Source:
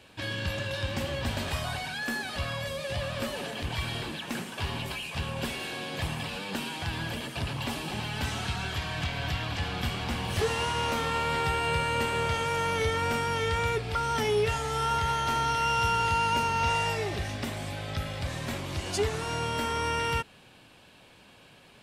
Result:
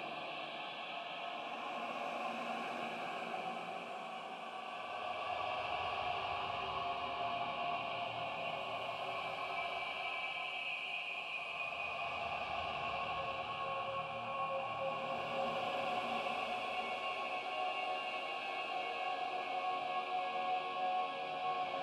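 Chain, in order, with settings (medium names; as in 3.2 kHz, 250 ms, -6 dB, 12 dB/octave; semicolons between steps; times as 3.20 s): vowel filter a; Paulstretch 12×, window 0.25 s, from 4.13 s; trim +7.5 dB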